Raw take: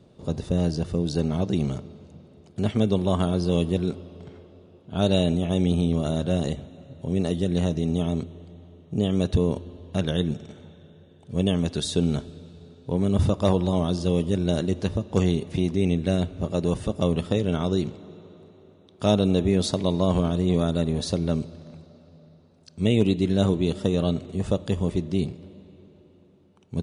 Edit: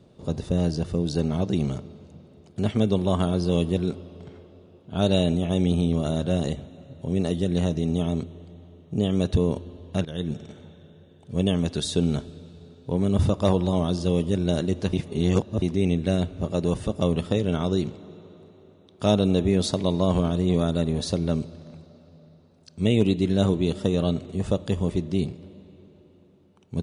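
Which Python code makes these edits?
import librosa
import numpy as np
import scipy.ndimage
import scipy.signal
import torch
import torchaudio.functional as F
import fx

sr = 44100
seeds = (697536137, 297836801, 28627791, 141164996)

y = fx.edit(x, sr, fx.fade_in_from(start_s=10.05, length_s=0.34, floor_db=-15.0),
    fx.reverse_span(start_s=14.93, length_s=0.69), tone=tone)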